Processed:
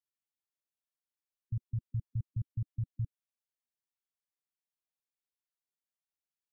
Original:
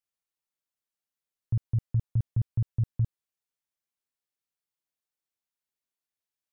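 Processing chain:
gate on every frequency bin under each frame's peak −20 dB strong
level −8.5 dB

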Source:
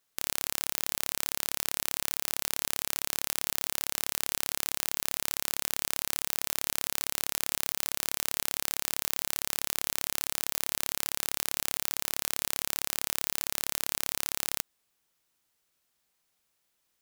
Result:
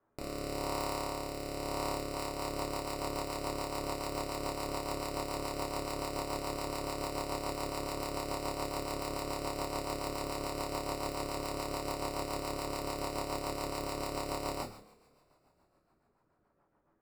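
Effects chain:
low-pass filter 1,200 Hz 24 dB per octave
in parallel at −4 dB: wrap-around overflow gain 30 dB
on the sum: coupled-rooms reverb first 0.6 s, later 3.4 s, from −27 dB, DRR −3 dB
rotating-speaker cabinet horn 0.9 Hz, later 7 Hz, at 0:01.73
level +8 dB

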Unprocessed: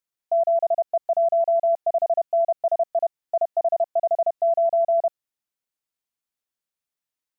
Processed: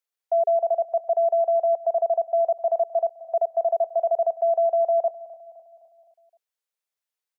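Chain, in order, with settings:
Chebyshev high-pass filter 410 Hz, order 8
on a send: repeating echo 258 ms, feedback 54%, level −18.5 dB

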